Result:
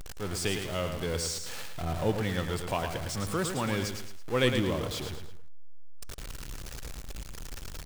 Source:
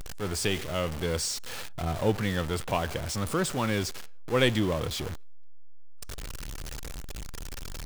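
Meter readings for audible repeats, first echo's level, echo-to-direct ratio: 3, -7.0 dB, -6.5 dB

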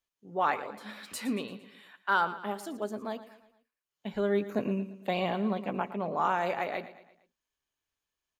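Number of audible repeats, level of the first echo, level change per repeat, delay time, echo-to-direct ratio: 4, -14.5 dB, -6.5 dB, 0.114 s, -13.5 dB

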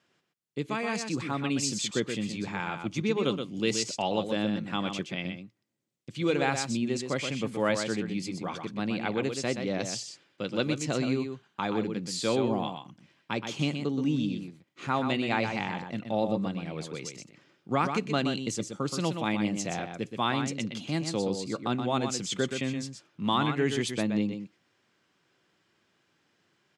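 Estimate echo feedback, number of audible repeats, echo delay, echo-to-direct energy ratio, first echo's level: no steady repeat, 1, 0.124 s, -7.0 dB, -7.0 dB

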